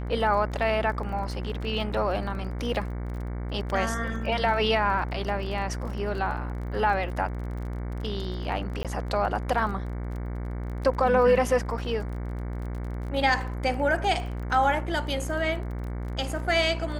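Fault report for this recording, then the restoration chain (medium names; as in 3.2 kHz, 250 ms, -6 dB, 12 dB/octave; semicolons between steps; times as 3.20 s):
buzz 60 Hz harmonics 38 -32 dBFS
crackle 26 per s -36 dBFS
8.83–8.85 s: dropout 17 ms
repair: de-click; de-hum 60 Hz, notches 38; interpolate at 8.83 s, 17 ms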